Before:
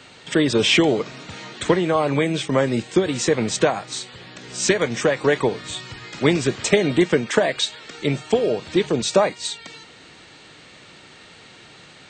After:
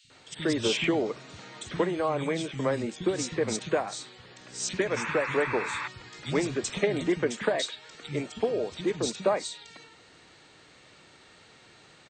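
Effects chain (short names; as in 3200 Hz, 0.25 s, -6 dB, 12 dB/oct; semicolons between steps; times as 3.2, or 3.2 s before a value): painted sound noise, 4.86–5.78, 840–2700 Hz -25 dBFS; three bands offset in time highs, lows, mids 40/100 ms, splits 190/2900 Hz; gain -8 dB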